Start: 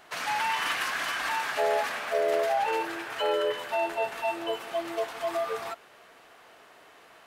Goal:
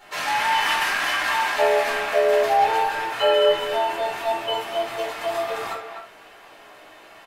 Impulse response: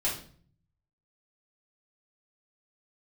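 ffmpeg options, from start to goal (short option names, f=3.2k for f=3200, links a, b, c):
-filter_complex "[0:a]asplit=2[a][b];[b]adelay=250,highpass=300,lowpass=3.4k,asoftclip=type=hard:threshold=-24dB,volume=-7dB[c];[a][c]amix=inputs=2:normalize=0[d];[1:a]atrim=start_sample=2205,atrim=end_sample=3969[e];[d][e]afir=irnorm=-1:irlink=0"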